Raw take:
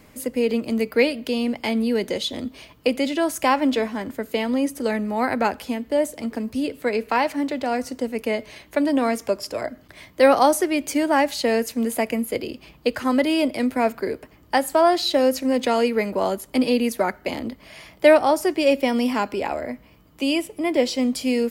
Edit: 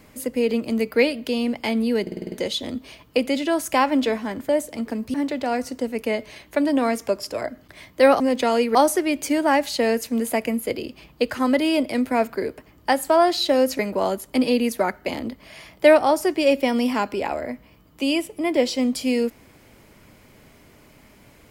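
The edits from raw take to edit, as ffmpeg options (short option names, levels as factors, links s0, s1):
-filter_complex "[0:a]asplit=12[s0][s1][s2][s3][s4][s5][s6][s7][s8][s9][s10][s11];[s0]atrim=end=2.072[s12];[s1]atrim=start=2.018:end=2.072[s13];[s2]atrim=start=2.018:end=2.072[s14];[s3]atrim=start=2.018:end=2.072[s15];[s4]atrim=start=2.018:end=2.072[s16];[s5]atrim=start=2.018:end=2.072[s17];[s6]atrim=start=2.018:end=4.192[s18];[s7]atrim=start=5.938:end=6.592[s19];[s8]atrim=start=7.338:end=10.402[s20];[s9]atrim=start=15.438:end=15.992[s21];[s10]atrim=start=10.398:end=15.442[s22];[s11]atrim=start=15.988[s23];[s12][s13]acrossfade=d=0.004:c1=hsin:c2=hsin[s24];[s24][s14]acrossfade=d=0.004:c1=hsin:c2=hsin[s25];[s25][s15]acrossfade=d=0.004:c1=hsin:c2=hsin[s26];[s26][s16]acrossfade=d=0.004:c1=hsin:c2=hsin[s27];[s27][s17]acrossfade=d=0.004:c1=hsin:c2=hsin[s28];[s28][s18]acrossfade=d=0.004:c1=hsin:c2=hsin[s29];[s29][s19]acrossfade=d=0.004:c1=hsin:c2=hsin[s30];[s30][s20]acrossfade=d=0.004:c1=hsin:c2=hsin[s31];[s31][s21]acrossfade=d=0.004:c1=hsin:c2=hsin[s32];[s32][s22]acrossfade=d=0.004:c1=hsin:c2=hsin[s33];[s33][s23]acrossfade=d=0.004:c1=hsin:c2=hsin"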